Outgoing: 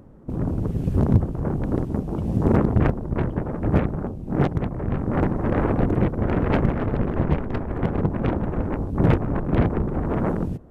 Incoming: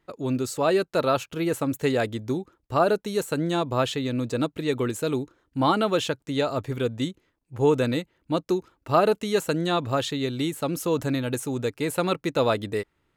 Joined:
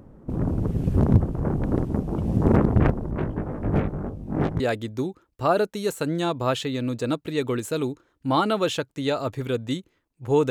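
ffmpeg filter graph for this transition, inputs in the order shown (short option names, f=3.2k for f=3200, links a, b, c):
-filter_complex "[0:a]asettb=1/sr,asplit=3[a][b][c];[a]atrim=end=3.114[d];[b]atrim=start=3.11:end=4.6,asetpts=PTS-STARTPTS,afade=t=in:d=0.004:c=qsin,afade=t=out:st=1.486:d=0.004:c=qsin,flanger=delay=18.5:depth=2.2:speed=0.66[e];[c]atrim=start=4.596[f];[d][e]acrossfade=d=0.004:c1=hsin:c2=qsin[g];[g][f]acrossfade=d=0.004:c1=qsin:c2=hsin,apad=whole_dur=10.5,atrim=end=10.5,atrim=end=4.602[h];[1:a]atrim=start=1.908:end=7.81[i];[h][i]acrossfade=d=0.004:c1=hsin:c2=hsin"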